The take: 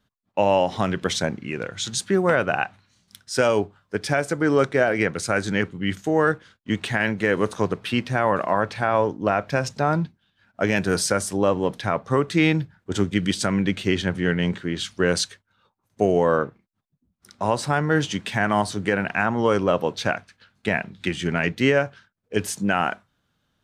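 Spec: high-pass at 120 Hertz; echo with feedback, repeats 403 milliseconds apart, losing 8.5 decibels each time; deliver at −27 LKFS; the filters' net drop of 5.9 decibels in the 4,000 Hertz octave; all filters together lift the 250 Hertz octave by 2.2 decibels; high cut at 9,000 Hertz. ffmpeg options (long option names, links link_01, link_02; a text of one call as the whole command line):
ffmpeg -i in.wav -af "highpass=120,lowpass=9000,equalizer=frequency=250:width_type=o:gain=3.5,equalizer=frequency=4000:width_type=o:gain=-8,aecho=1:1:403|806|1209|1612:0.376|0.143|0.0543|0.0206,volume=-4.5dB" out.wav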